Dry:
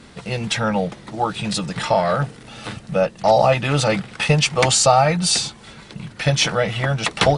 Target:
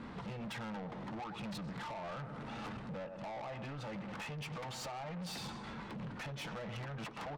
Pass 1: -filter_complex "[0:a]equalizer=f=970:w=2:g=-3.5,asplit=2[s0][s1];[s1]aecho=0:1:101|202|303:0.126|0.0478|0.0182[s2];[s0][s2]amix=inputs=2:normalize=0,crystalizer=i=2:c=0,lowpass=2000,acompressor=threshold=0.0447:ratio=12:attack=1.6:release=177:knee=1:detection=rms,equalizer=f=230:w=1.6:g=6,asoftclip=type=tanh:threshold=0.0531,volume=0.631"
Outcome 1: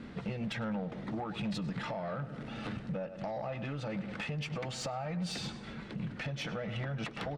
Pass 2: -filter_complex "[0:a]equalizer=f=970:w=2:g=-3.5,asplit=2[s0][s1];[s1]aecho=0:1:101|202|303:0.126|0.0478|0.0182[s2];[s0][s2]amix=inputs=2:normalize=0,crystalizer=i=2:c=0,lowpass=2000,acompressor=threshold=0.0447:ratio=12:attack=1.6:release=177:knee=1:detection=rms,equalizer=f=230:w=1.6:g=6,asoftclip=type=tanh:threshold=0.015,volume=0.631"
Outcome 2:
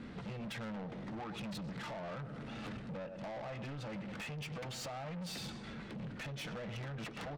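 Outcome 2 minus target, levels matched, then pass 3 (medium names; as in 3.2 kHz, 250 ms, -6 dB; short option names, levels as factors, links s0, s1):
1 kHz band -3.5 dB
-filter_complex "[0:a]equalizer=f=970:w=2:g=7.5,asplit=2[s0][s1];[s1]aecho=0:1:101|202|303:0.126|0.0478|0.0182[s2];[s0][s2]amix=inputs=2:normalize=0,crystalizer=i=2:c=0,lowpass=2000,acompressor=threshold=0.0447:ratio=12:attack=1.6:release=177:knee=1:detection=rms,equalizer=f=230:w=1.6:g=6,asoftclip=type=tanh:threshold=0.015,volume=0.631"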